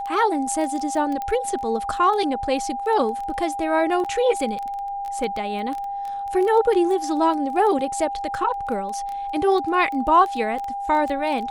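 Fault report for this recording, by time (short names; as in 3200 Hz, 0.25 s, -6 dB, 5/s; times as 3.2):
crackle 11/s -26 dBFS
tone 800 Hz -26 dBFS
1.22 pop -16 dBFS
4.04–4.05 gap 7.2 ms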